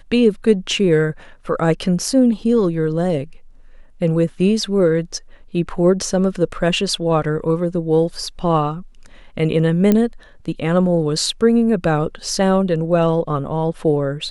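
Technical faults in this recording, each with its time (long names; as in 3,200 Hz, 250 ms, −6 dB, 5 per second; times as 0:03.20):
0:09.92: click −4 dBFS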